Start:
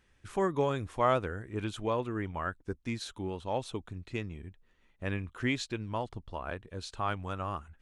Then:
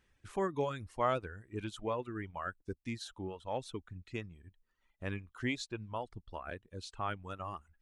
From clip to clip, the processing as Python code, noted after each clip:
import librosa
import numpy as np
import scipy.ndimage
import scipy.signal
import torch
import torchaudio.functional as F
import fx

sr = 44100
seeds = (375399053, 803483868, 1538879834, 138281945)

y = fx.dereverb_blind(x, sr, rt60_s=1.1)
y = y * librosa.db_to_amplitude(-4.0)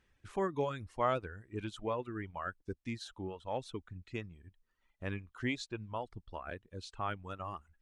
y = fx.high_shelf(x, sr, hz=9900.0, db=-9.5)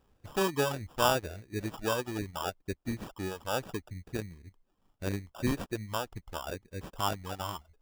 y = fx.sample_hold(x, sr, seeds[0], rate_hz=2100.0, jitter_pct=0)
y = y * librosa.db_to_amplitude(5.0)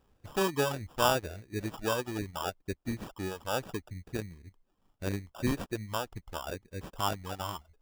y = x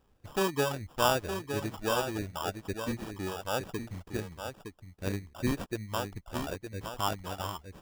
y = x + 10.0 ** (-7.5 / 20.0) * np.pad(x, (int(913 * sr / 1000.0), 0))[:len(x)]